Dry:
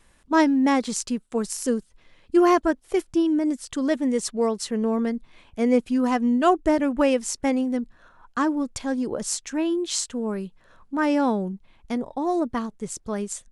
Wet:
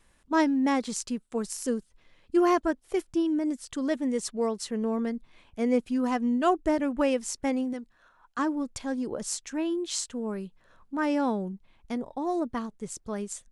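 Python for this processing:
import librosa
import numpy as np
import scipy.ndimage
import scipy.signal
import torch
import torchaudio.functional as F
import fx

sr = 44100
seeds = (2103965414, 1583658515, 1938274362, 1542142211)

y = fx.low_shelf(x, sr, hz=440.0, db=-9.5, at=(7.73, 8.39))
y = y * 10.0 ** (-5.0 / 20.0)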